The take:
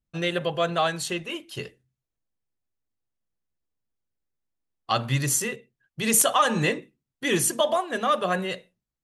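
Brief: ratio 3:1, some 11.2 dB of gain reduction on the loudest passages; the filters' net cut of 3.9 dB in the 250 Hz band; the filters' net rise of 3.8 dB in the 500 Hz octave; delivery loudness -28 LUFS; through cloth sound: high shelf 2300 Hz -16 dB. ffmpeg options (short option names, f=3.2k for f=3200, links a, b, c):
-af "equalizer=f=250:t=o:g=-9,equalizer=f=500:t=o:g=8,acompressor=threshold=-29dB:ratio=3,highshelf=f=2.3k:g=-16,volume=6.5dB"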